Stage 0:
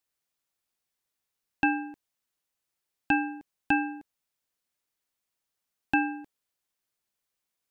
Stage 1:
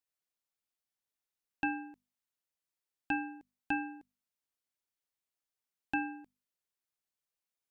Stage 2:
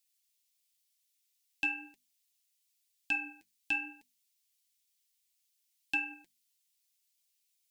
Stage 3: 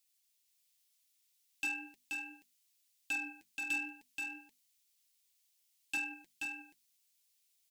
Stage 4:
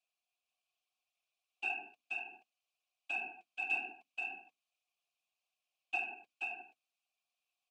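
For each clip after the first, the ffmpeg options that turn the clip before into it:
-af "bandreject=f=50:t=h:w=6,bandreject=f=100:t=h:w=6,bandreject=f=150:t=h:w=6,bandreject=f=200:t=h:w=6,bandreject=f=250:t=h:w=6,volume=0.376"
-af "aexciter=amount=5.5:drive=8.8:freq=2000,flanger=delay=3.6:depth=7.9:regen=44:speed=0.98:shape=triangular,volume=0.562"
-af "asoftclip=type=tanh:threshold=0.0237,aecho=1:1:479:0.631,volume=1.12"
-filter_complex "[0:a]afftfilt=real='hypot(re,im)*cos(2*PI*random(0))':imag='hypot(re,im)*sin(2*PI*random(1))':win_size=512:overlap=0.75,asplit=3[s0][s1][s2];[s0]bandpass=f=730:t=q:w=8,volume=1[s3];[s1]bandpass=f=1090:t=q:w=8,volume=0.501[s4];[s2]bandpass=f=2440:t=q:w=8,volume=0.355[s5];[s3][s4][s5]amix=inputs=3:normalize=0,volume=7.08"

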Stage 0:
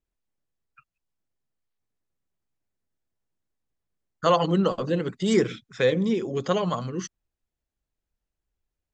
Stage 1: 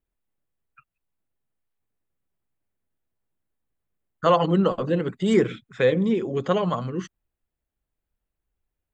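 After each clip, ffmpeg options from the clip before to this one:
-af "equalizer=f=5500:w=1.6:g=-14,volume=1.26"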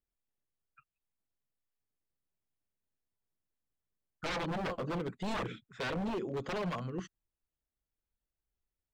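-filter_complex "[0:a]aeval=exprs='0.0891*(abs(mod(val(0)/0.0891+3,4)-2)-1)':c=same,acrossover=split=6100[s0][s1];[s1]acompressor=threshold=0.00355:ratio=4:attack=1:release=60[s2];[s0][s2]amix=inputs=2:normalize=0,volume=0.355"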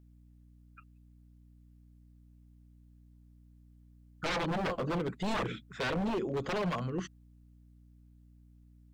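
-filter_complex "[0:a]asplit=2[s0][s1];[s1]alimiter=level_in=5.31:limit=0.0631:level=0:latency=1,volume=0.188,volume=1.12[s2];[s0][s2]amix=inputs=2:normalize=0,aeval=exprs='val(0)+0.00141*(sin(2*PI*60*n/s)+sin(2*PI*2*60*n/s)/2+sin(2*PI*3*60*n/s)/3+sin(2*PI*4*60*n/s)/4+sin(2*PI*5*60*n/s)/5)':c=same"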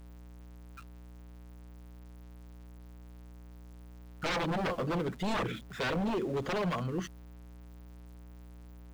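-af "aeval=exprs='val(0)+0.5*0.00447*sgn(val(0))':c=same"

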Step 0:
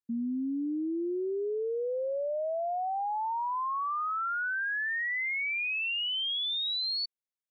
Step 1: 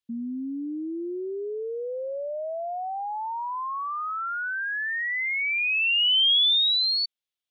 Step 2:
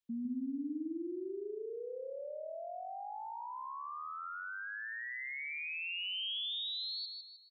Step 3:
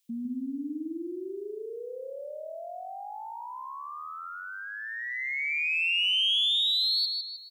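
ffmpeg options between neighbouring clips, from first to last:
-af "equalizer=f=3300:t=o:w=0.95:g=12"
-filter_complex "[0:a]acrossover=split=270[s0][s1];[s1]acompressor=threshold=0.00447:ratio=2[s2];[s0][s2]amix=inputs=2:normalize=0,asplit=2[s3][s4];[s4]aecho=0:1:155|310|465|620|775:0.562|0.231|0.0945|0.0388|0.0159[s5];[s3][s5]amix=inputs=2:normalize=0,volume=0.562"
-af "aexciter=amount=1.7:drive=9.4:freq=2200,volume=1.58"

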